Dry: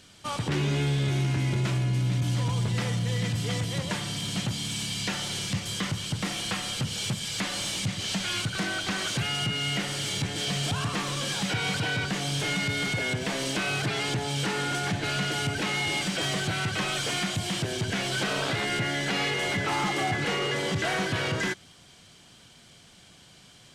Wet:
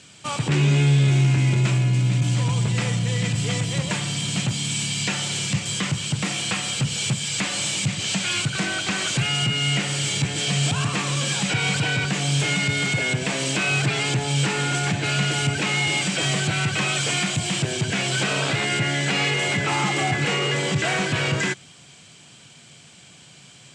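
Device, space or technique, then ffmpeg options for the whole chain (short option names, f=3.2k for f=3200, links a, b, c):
car door speaker: -af "highpass=91,equalizer=f=140:t=q:w=4:g=7,equalizer=f=2.5k:t=q:w=4:g=6,equalizer=f=7.6k:t=q:w=4:g=9,lowpass=f=9.4k:w=0.5412,lowpass=f=9.4k:w=1.3066,volume=3.5dB"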